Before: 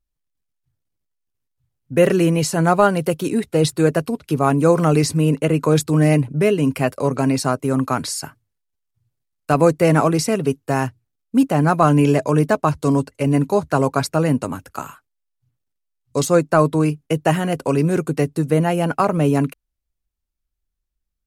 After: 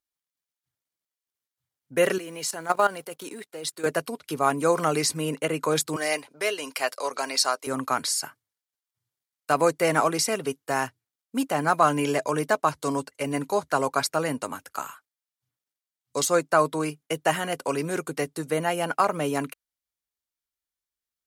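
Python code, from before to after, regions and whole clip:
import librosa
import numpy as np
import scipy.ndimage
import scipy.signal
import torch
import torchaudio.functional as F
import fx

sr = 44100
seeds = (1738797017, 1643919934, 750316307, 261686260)

y = fx.chain(x, sr, fx.law_mismatch(coded='A'),
    fx.highpass(hz=190.0, slope=12),
    fx.level_steps(step_db=14), at=(2.18, 3.86))
y = fx.chain(y, sr, fx.highpass(hz=510.0, slope=12),
    fx.peak_eq(hz=4700.0, db=8.0, octaves=0.8), at=(5.96, 7.67))
y = fx.highpass(y, sr, hz=990.0, slope=6)
y = fx.notch(y, sr, hz=2600.0, q=15.0)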